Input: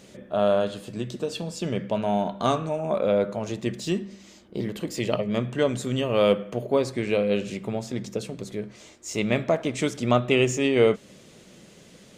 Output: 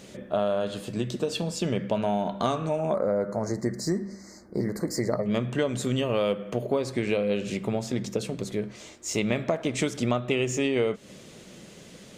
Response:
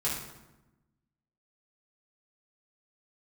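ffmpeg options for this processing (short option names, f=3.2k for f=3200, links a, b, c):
-filter_complex "[0:a]acompressor=threshold=-25dB:ratio=6,asettb=1/sr,asplit=3[a][b][c];[a]atrim=end=2.944[d];[b]atrim=start=2.94:end=5.26,asetpts=PTS-STARTPTS,afade=t=in:d=0.004:c=qsin,afade=t=out:st=2.316:d=0.004:c=qsin,asuperstop=centerf=3000:order=12:qfactor=1.4[e];[c]atrim=start=5.256[f];[d][e]acrossfade=d=0.004:c1=hsin:c2=qsin[g];[g][f]acrossfade=d=0.004:c1=qsin:c2=hsin,volume=3dB"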